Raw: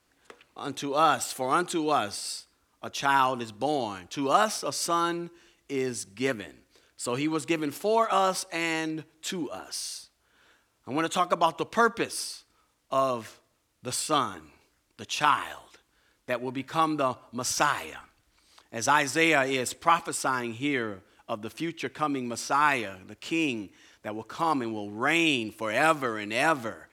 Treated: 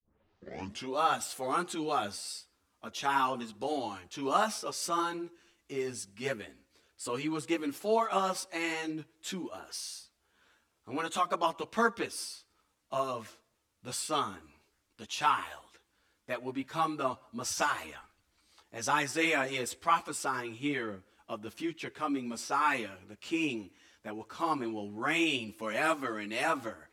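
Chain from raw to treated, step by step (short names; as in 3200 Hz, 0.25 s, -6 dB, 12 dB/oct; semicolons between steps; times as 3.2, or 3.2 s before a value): tape start at the beginning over 0.94 s; ensemble effect; gain -2.5 dB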